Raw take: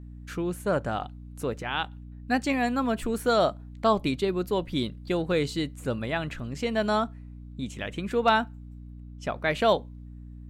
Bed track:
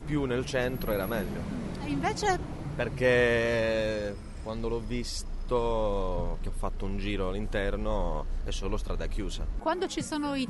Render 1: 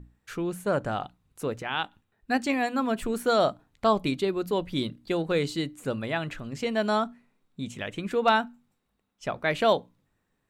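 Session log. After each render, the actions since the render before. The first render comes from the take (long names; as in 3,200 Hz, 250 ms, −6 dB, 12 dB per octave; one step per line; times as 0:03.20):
mains-hum notches 60/120/180/240/300 Hz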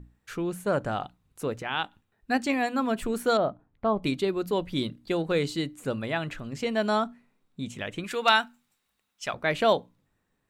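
0:03.37–0:04.03: head-to-tape spacing loss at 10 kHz 45 dB
0:08.04–0:09.34: tilt shelving filter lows −8.5 dB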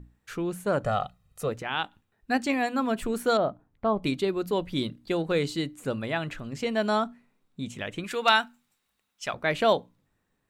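0:00.83–0:01.49: comb filter 1.6 ms, depth 88%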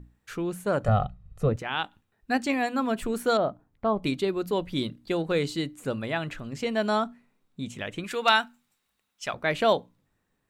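0:00.88–0:01.56: RIAA equalisation playback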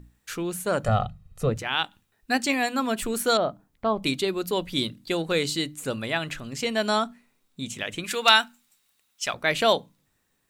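high-shelf EQ 2,600 Hz +11.5 dB
mains-hum notches 50/100/150/200 Hz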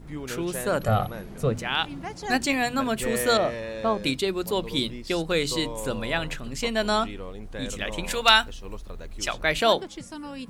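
mix in bed track −6.5 dB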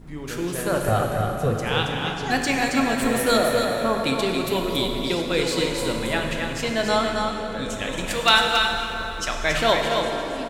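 single-tap delay 274 ms −5.5 dB
dense smooth reverb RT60 3.6 s, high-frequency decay 0.65×, DRR 1.5 dB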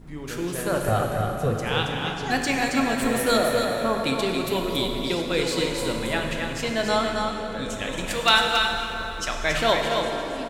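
level −1.5 dB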